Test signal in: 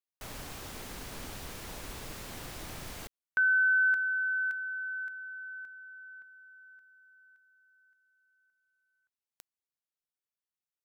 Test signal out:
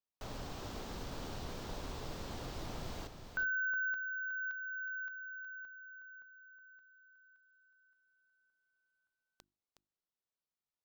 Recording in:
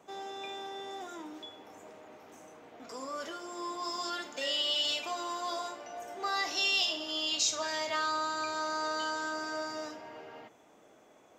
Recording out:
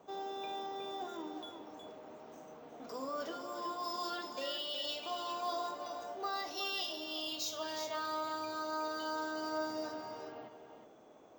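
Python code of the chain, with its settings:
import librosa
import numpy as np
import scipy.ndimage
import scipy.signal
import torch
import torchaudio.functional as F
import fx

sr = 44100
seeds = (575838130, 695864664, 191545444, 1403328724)

p1 = scipy.signal.sosfilt(scipy.signal.butter(2, 4900.0, 'lowpass', fs=sr, output='sos'), x)
p2 = fx.peak_eq(p1, sr, hz=2100.0, db=-9.0, octaves=1.3)
p3 = fx.hum_notches(p2, sr, base_hz=50, count=7)
p4 = fx.rider(p3, sr, range_db=3, speed_s=0.5)
p5 = p4 + fx.echo_single(p4, sr, ms=366, db=-8.0, dry=0)
p6 = np.repeat(scipy.signal.resample_poly(p5, 1, 2), 2)[:len(p5)]
y = F.gain(torch.from_numpy(p6), -1.5).numpy()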